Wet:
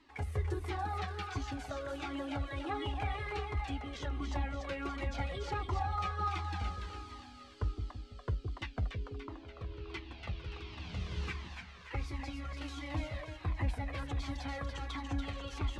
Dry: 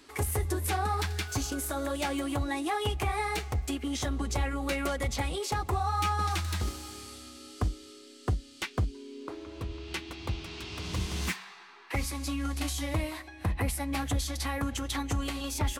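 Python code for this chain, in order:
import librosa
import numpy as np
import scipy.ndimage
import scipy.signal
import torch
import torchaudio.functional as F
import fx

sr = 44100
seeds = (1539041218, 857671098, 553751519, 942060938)

y = scipy.signal.sosfilt(scipy.signal.butter(2, 3600.0, 'lowpass', fs=sr, output='sos'), x)
y = fx.echo_split(y, sr, split_hz=510.0, low_ms=165, high_ms=288, feedback_pct=52, wet_db=-5.0)
y = fx.comb_cascade(y, sr, direction='falling', hz=1.4)
y = y * librosa.db_to_amplitude(-3.5)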